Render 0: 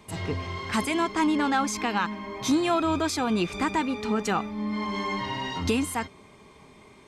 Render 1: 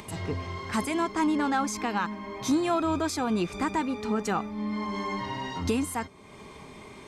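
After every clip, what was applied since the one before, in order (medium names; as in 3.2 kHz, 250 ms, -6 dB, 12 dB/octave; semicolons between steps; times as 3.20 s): dynamic bell 3 kHz, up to -5 dB, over -44 dBFS, Q 1.1; upward compressor, threshold -35 dBFS; trim -1.5 dB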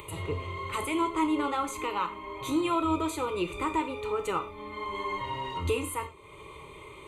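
static phaser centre 1.1 kHz, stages 8; gated-style reverb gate 140 ms falling, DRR 7 dB; trim +1.5 dB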